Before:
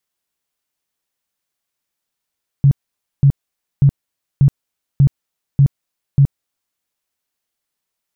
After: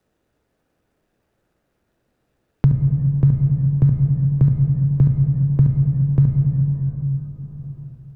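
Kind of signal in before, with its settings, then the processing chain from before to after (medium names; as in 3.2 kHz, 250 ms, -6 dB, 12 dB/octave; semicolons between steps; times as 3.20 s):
tone bursts 139 Hz, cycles 10, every 0.59 s, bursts 7, -6 dBFS
median filter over 41 samples; plate-style reverb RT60 2.4 s, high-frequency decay 0.5×, DRR 1.5 dB; three bands compressed up and down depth 70%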